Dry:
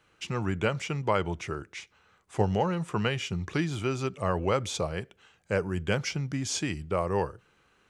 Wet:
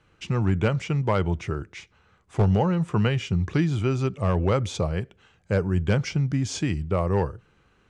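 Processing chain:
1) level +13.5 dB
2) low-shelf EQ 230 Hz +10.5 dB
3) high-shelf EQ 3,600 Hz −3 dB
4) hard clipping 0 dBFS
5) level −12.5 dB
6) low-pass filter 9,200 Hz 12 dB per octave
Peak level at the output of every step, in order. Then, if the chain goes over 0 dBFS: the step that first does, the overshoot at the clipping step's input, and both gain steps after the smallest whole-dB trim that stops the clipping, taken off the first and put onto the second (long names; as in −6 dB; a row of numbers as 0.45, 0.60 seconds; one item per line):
+3.5, +7.5, +7.5, 0.0, −12.5, −12.5 dBFS
step 1, 7.5 dB
step 1 +5.5 dB, step 5 −4.5 dB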